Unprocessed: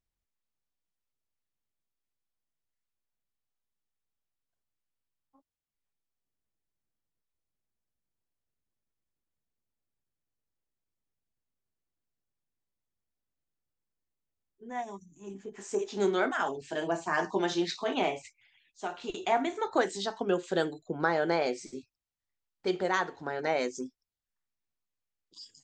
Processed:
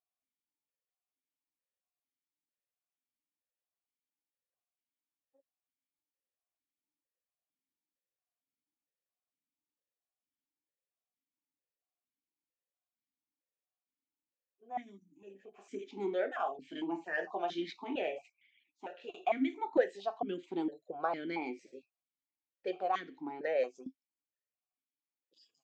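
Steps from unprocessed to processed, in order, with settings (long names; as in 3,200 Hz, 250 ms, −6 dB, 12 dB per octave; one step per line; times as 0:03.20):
formant filter that steps through the vowels 4.4 Hz
level +5 dB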